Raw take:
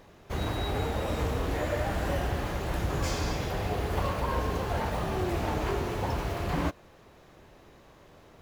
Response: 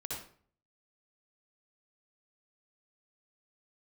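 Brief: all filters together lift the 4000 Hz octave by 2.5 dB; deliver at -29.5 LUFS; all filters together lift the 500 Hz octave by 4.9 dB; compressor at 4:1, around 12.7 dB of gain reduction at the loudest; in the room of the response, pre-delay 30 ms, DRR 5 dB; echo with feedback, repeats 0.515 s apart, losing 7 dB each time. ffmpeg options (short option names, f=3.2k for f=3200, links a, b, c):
-filter_complex "[0:a]equalizer=f=500:t=o:g=6,equalizer=f=4k:t=o:g=3,acompressor=threshold=-39dB:ratio=4,aecho=1:1:515|1030|1545|2060|2575:0.447|0.201|0.0905|0.0407|0.0183,asplit=2[a][b];[1:a]atrim=start_sample=2205,adelay=30[c];[b][c]afir=irnorm=-1:irlink=0,volume=-5.5dB[d];[a][d]amix=inputs=2:normalize=0,volume=9dB"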